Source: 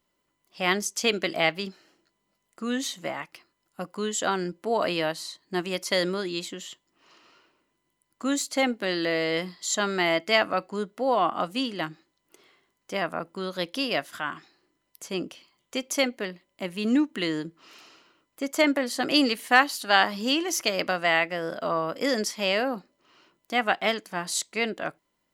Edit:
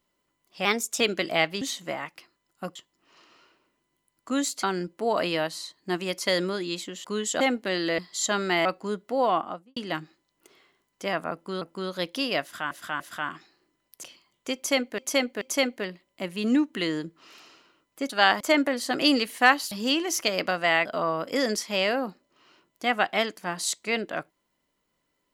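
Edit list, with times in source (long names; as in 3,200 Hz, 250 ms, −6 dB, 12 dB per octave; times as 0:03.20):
0:00.65–0:01.05: play speed 113%
0:01.66–0:02.78: remove
0:03.92–0:04.28: swap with 0:06.69–0:08.57
0:09.15–0:09.47: remove
0:10.14–0:10.54: remove
0:11.15–0:11.65: fade out and dull
0:13.21–0:13.50: repeat, 2 plays
0:14.02–0:14.31: repeat, 3 plays
0:15.05–0:15.30: remove
0:15.82–0:16.25: repeat, 3 plays
0:19.81–0:20.12: move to 0:18.50
0:21.26–0:21.54: remove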